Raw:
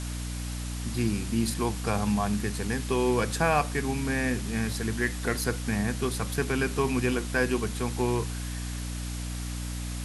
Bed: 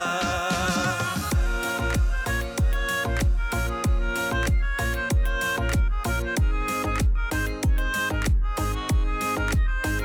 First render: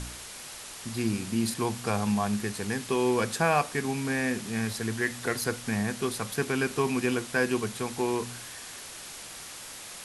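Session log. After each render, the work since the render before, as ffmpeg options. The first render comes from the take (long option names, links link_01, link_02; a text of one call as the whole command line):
ffmpeg -i in.wav -af "bandreject=frequency=60:width_type=h:width=4,bandreject=frequency=120:width_type=h:width=4,bandreject=frequency=180:width_type=h:width=4,bandreject=frequency=240:width_type=h:width=4,bandreject=frequency=300:width_type=h:width=4" out.wav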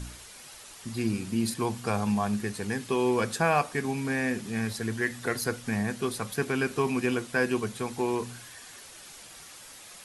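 ffmpeg -i in.wav -af "afftdn=noise_reduction=7:noise_floor=-43" out.wav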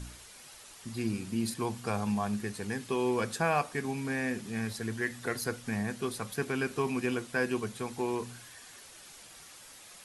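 ffmpeg -i in.wav -af "volume=-4dB" out.wav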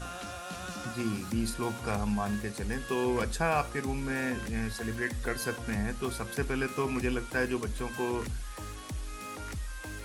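ffmpeg -i in.wav -i bed.wav -filter_complex "[1:a]volume=-15.5dB[link_01];[0:a][link_01]amix=inputs=2:normalize=0" out.wav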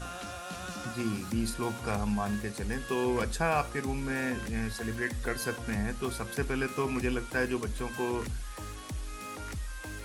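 ffmpeg -i in.wav -af anull out.wav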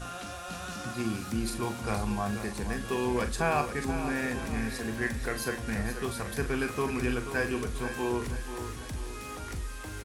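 ffmpeg -i in.wav -filter_complex "[0:a]asplit=2[link_01][link_02];[link_02]adelay=41,volume=-9dB[link_03];[link_01][link_03]amix=inputs=2:normalize=0,aecho=1:1:484|968|1452|1936|2420:0.316|0.152|0.0729|0.035|0.0168" out.wav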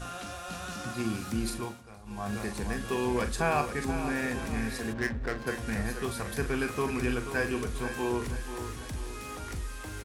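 ffmpeg -i in.wav -filter_complex "[0:a]asplit=3[link_01][link_02][link_03];[link_01]afade=type=out:start_time=4.92:duration=0.02[link_04];[link_02]adynamicsmooth=sensitivity=6:basefreq=520,afade=type=in:start_time=4.92:duration=0.02,afade=type=out:start_time=5.46:duration=0.02[link_05];[link_03]afade=type=in:start_time=5.46:duration=0.02[link_06];[link_04][link_05][link_06]amix=inputs=3:normalize=0,asplit=3[link_07][link_08][link_09];[link_07]atrim=end=1.84,asetpts=PTS-STARTPTS,afade=type=out:start_time=1.5:duration=0.34:silence=0.112202[link_10];[link_08]atrim=start=1.84:end=2.04,asetpts=PTS-STARTPTS,volume=-19dB[link_11];[link_09]atrim=start=2.04,asetpts=PTS-STARTPTS,afade=type=in:duration=0.34:silence=0.112202[link_12];[link_10][link_11][link_12]concat=n=3:v=0:a=1" out.wav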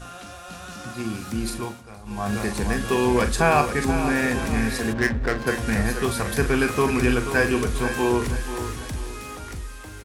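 ffmpeg -i in.wav -af "dynaudnorm=framelen=670:gausssize=5:maxgain=9.5dB" out.wav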